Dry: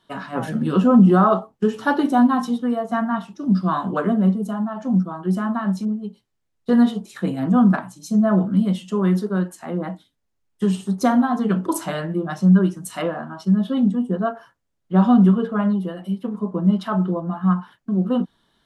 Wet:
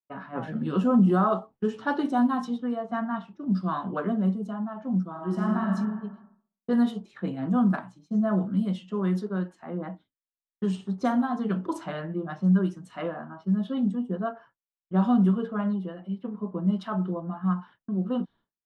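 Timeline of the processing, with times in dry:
5.1–5.69 reverb throw, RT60 1.3 s, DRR -1 dB
whole clip: low-pass opened by the level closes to 1400 Hz, open at -12 dBFS; expander -41 dBFS; gain -7.5 dB

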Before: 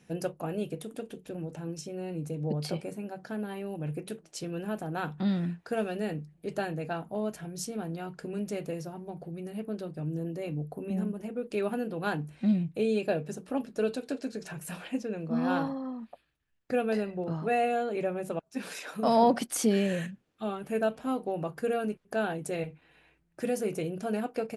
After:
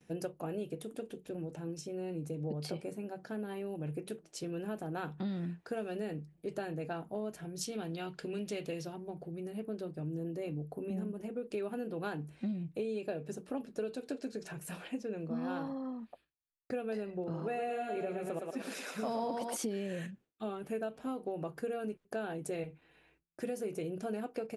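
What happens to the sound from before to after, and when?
7.61–8.96 bell 3400 Hz +11.5 dB 1.4 oct
17.22–19.56 thinning echo 0.115 s, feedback 55%, high-pass 310 Hz, level -3 dB
whole clip: gate with hold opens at -55 dBFS; bell 380 Hz +4 dB 0.8 oct; compressor 6:1, threshold -29 dBFS; gain -4.5 dB

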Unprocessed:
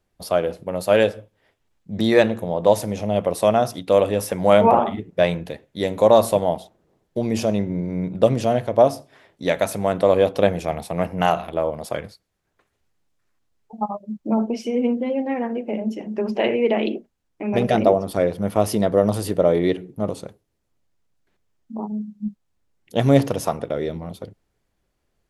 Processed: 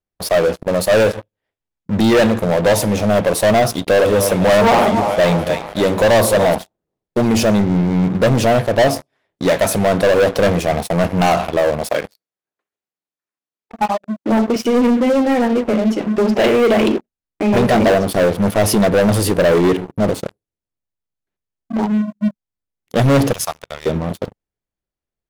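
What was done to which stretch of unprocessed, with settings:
3.7–6.55 split-band echo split 490 Hz, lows 98 ms, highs 0.291 s, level -13 dB
11.91–14.56 HPF 250 Hz
23.33–23.86 passive tone stack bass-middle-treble 10-0-10
whole clip: sample leveller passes 5; gain -6.5 dB

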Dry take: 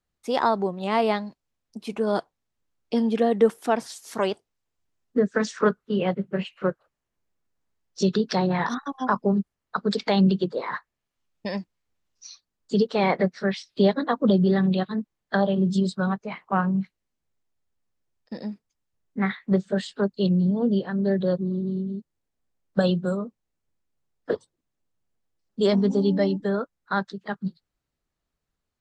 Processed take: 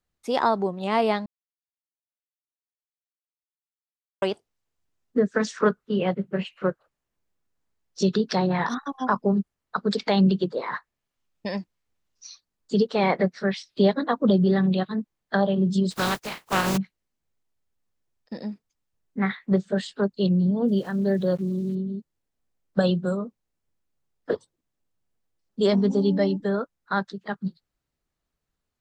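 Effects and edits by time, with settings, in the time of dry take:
1.26–4.22 mute
15.9–16.76 spectral contrast lowered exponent 0.37
20.65–21.75 sample gate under -45.5 dBFS

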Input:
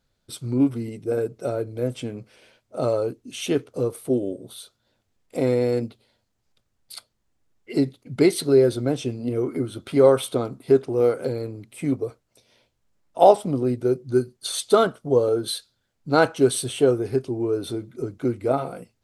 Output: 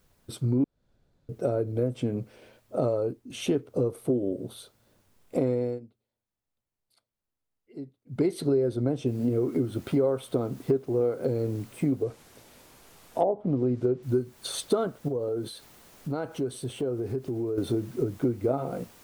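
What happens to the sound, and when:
0.64–1.29 room tone
2.85–3.3 fade out, to -11 dB
5.51–8.34 dip -24 dB, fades 0.28 s
9.07 noise floor step -66 dB -50 dB
12.03–14.03 treble ducked by the level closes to 590 Hz, closed at -10 dBFS
15.08–17.58 compressor 3:1, threshold -36 dBFS
whole clip: tilt shelf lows +6.5 dB, about 1200 Hz; compressor 5:1, threshold -23 dBFS

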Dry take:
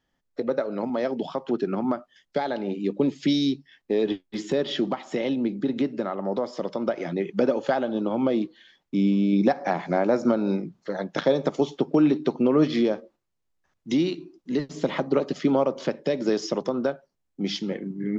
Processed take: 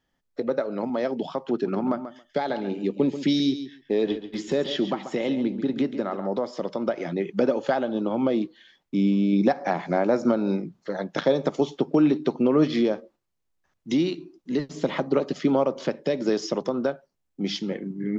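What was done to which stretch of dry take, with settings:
1.51–6.27 feedback echo 0.137 s, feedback 15%, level -11 dB

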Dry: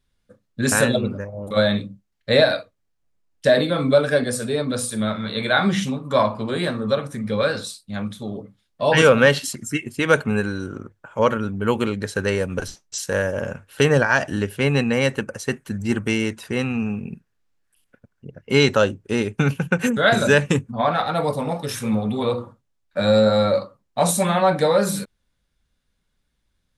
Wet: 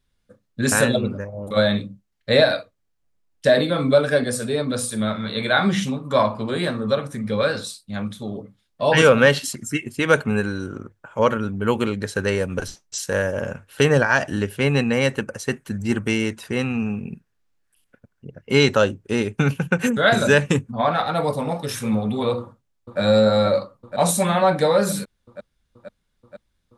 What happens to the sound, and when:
22.39–23 echo throw 0.48 s, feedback 80%, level -5.5 dB

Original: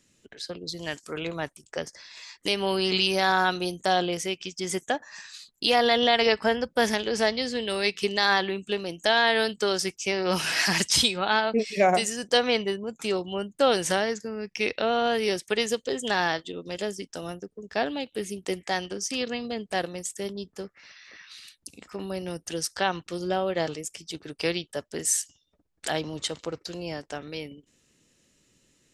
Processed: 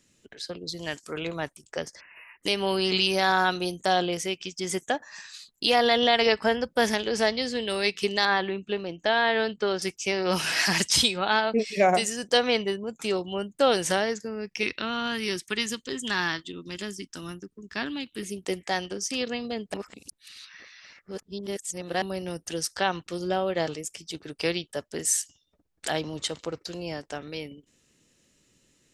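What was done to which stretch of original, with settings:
2–2.42 spectral delete 3000–10000 Hz
8.25–9.82 air absorption 210 m
14.63–18.23 band shelf 600 Hz -13 dB 1.1 oct
19.74–22.02 reverse

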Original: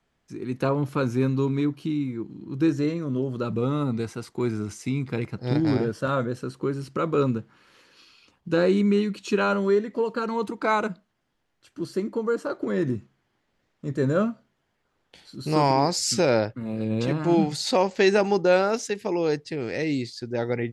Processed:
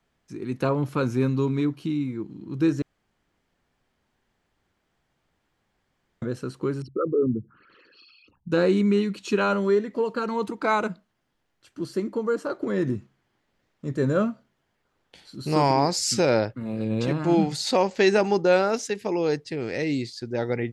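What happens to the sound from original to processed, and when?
2.82–6.22 room tone
6.82–8.52 formant sharpening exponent 3

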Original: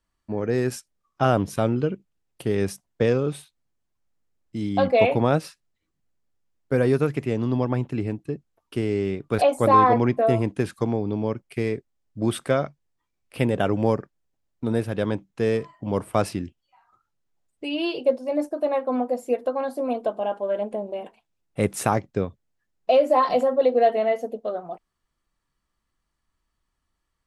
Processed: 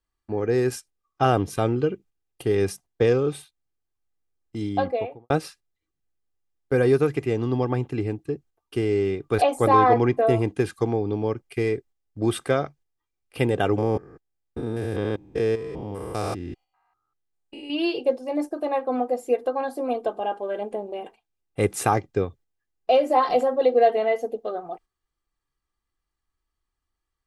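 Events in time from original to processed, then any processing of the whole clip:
4.56–5.3 studio fade out
13.78–17.7 stepped spectrum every 0.2 s
whole clip: gate -47 dBFS, range -7 dB; comb 2.5 ms, depth 45%

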